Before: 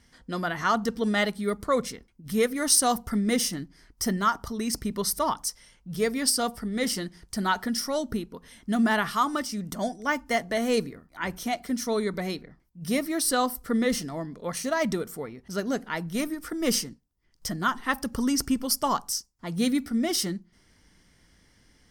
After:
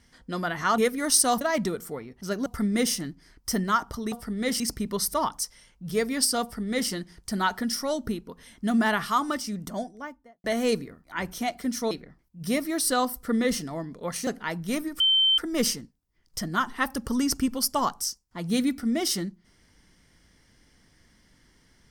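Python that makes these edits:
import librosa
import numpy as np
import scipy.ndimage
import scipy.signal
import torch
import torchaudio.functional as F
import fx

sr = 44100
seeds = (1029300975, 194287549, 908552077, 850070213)

y = fx.studio_fade_out(x, sr, start_s=9.5, length_s=0.99)
y = fx.edit(y, sr, fx.cut(start_s=0.78, length_s=1.58),
    fx.duplicate(start_s=6.47, length_s=0.48, to_s=4.65),
    fx.cut(start_s=11.96, length_s=0.36),
    fx.move(start_s=14.68, length_s=1.05, to_s=2.99),
    fx.insert_tone(at_s=16.46, length_s=0.38, hz=3100.0, db=-17.5), tone=tone)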